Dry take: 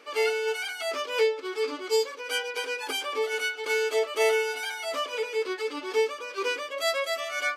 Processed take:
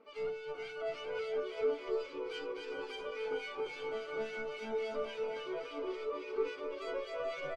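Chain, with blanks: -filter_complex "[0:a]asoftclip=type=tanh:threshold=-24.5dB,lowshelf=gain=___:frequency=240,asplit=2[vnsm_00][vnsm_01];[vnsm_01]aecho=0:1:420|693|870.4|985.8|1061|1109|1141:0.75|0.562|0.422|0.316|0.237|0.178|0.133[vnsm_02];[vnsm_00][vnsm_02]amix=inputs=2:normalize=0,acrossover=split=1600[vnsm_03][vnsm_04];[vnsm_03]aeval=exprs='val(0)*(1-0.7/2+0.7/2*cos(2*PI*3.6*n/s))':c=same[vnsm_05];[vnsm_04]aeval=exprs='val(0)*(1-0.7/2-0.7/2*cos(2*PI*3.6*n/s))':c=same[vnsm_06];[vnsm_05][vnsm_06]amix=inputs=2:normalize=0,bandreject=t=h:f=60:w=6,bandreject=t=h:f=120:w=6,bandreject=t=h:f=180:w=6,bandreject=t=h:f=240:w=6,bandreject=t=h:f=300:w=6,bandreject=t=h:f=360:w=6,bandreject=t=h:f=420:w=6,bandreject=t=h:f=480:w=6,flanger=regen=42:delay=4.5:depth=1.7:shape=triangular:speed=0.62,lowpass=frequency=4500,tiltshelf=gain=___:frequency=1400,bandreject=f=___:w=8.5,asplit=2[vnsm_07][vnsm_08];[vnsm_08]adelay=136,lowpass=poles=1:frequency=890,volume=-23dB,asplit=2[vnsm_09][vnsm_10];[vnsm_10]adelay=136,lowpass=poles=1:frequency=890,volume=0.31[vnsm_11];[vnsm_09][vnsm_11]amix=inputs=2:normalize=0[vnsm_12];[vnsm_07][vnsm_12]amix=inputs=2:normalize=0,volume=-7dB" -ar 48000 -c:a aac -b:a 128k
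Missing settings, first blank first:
11, 4, 1700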